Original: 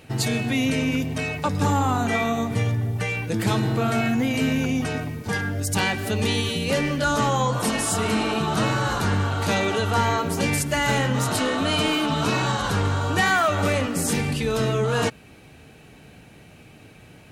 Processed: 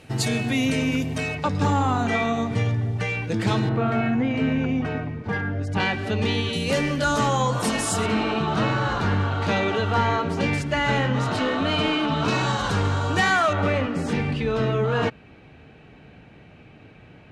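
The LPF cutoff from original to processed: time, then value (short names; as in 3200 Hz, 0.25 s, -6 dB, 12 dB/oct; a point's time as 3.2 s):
11000 Hz
from 1.35 s 5500 Hz
from 3.69 s 2200 Hz
from 5.8 s 3800 Hz
from 6.53 s 9800 Hz
from 8.06 s 3700 Hz
from 12.28 s 7300 Hz
from 13.53 s 2900 Hz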